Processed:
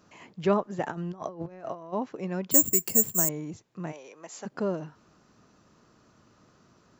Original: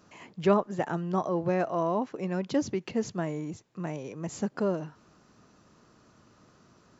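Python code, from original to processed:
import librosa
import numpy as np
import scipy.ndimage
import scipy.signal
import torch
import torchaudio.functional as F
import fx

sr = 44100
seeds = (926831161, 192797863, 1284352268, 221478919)

y = fx.over_compress(x, sr, threshold_db=-34.0, ratio=-0.5, at=(0.82, 1.92), fade=0.02)
y = fx.resample_bad(y, sr, factor=6, down='filtered', up='zero_stuff', at=(2.51, 3.29))
y = fx.highpass(y, sr, hz=610.0, slope=12, at=(3.91, 4.45), fade=0.02)
y = y * 10.0 ** (-1.0 / 20.0)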